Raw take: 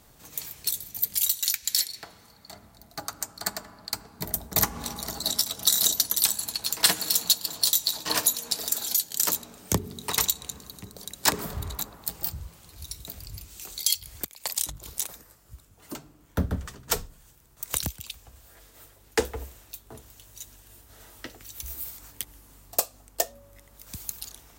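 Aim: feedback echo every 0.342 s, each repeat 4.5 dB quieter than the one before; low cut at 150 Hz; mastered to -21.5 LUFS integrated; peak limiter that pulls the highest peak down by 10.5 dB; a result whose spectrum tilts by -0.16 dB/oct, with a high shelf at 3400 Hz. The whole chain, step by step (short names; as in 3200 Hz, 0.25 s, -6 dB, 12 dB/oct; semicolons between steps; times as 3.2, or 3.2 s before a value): HPF 150 Hz; high shelf 3400 Hz +5.5 dB; limiter -9 dBFS; feedback echo 0.342 s, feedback 60%, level -4.5 dB; gain +3.5 dB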